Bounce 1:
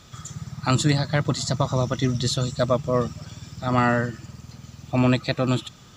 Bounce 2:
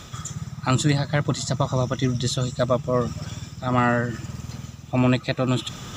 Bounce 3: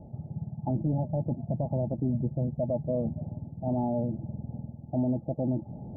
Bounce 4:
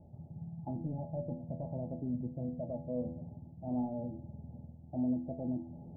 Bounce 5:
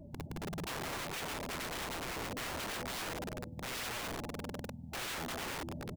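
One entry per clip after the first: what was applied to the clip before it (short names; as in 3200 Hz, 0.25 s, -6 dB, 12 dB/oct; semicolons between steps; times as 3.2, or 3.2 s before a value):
notch 4500 Hz, Q 7.4; reverse; upward compressor, threshold -24 dBFS; reverse
soft clip -10 dBFS, distortion -21 dB; rippled Chebyshev low-pass 870 Hz, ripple 6 dB; limiter -20 dBFS, peak gain reduction 8 dB
resonator 83 Hz, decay 0.58 s, harmonics all, mix 80%
bin magnitudes rounded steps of 30 dB; echo 0.408 s -19.5 dB; wrapped overs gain 41 dB; gain +6 dB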